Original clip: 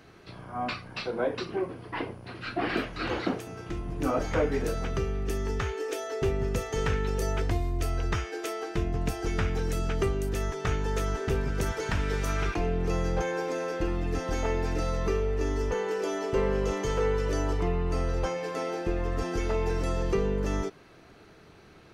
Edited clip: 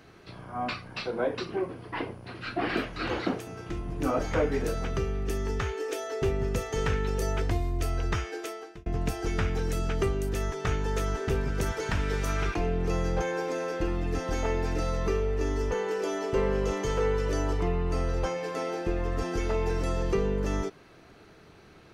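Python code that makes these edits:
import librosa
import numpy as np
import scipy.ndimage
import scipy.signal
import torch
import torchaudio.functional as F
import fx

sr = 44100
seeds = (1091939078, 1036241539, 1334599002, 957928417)

y = fx.edit(x, sr, fx.fade_out_span(start_s=8.31, length_s=0.55), tone=tone)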